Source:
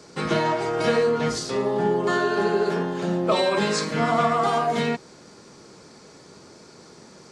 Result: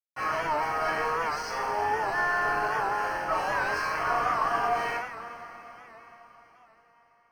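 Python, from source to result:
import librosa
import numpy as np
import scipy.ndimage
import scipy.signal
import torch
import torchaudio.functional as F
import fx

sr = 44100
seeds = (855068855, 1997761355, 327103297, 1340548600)

y = scipy.signal.sosfilt(scipy.signal.butter(4, 820.0, 'highpass', fs=sr, output='sos'), x)
y = fx.quant_companded(y, sr, bits=2)
y = scipy.signal.lfilter(np.full(12, 1.0 / 12), 1.0, y)
y = fx.rev_double_slope(y, sr, seeds[0], early_s=0.52, late_s=4.9, knee_db=-18, drr_db=-9.0)
y = fx.record_warp(y, sr, rpm=78.0, depth_cents=100.0)
y = F.gain(torch.from_numpy(y), -8.0).numpy()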